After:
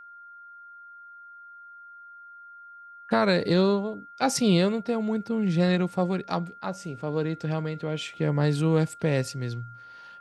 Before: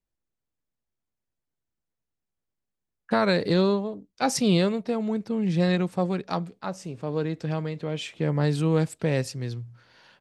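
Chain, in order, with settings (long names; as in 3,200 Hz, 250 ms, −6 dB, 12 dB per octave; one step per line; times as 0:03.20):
steady tone 1,400 Hz −44 dBFS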